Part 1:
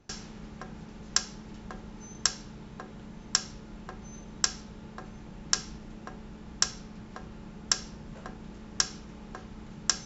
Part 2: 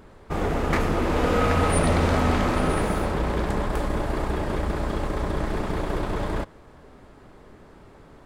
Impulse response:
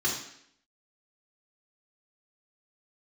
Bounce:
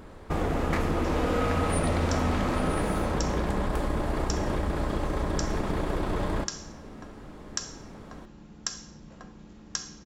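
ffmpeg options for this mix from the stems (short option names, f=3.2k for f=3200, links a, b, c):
-filter_complex "[0:a]adelay=950,volume=-4.5dB,asplit=2[a][b];[b]volume=-17dB[c];[1:a]volume=2.5dB,asplit=2[d][e];[e]volume=-21dB[f];[2:a]atrim=start_sample=2205[g];[c][f]amix=inputs=2:normalize=0[h];[h][g]afir=irnorm=-1:irlink=0[i];[a][d][i]amix=inputs=3:normalize=0,acompressor=threshold=-26dB:ratio=2.5"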